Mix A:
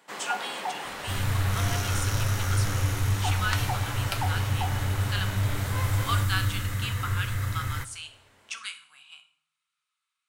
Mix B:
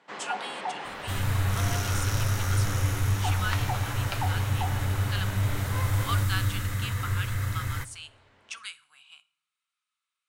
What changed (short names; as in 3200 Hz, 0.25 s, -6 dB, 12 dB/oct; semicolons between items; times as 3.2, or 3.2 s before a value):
speech: send -11.5 dB; first sound: add air absorption 140 m